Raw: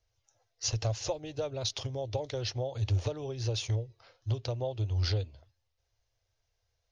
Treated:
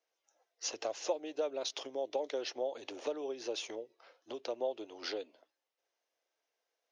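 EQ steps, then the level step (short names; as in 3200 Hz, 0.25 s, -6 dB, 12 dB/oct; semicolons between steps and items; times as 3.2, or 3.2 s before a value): steep high-pass 260 Hz 36 dB/oct; bell 4400 Hz -4.5 dB 0.59 oct; high shelf 6400 Hz -8 dB; 0.0 dB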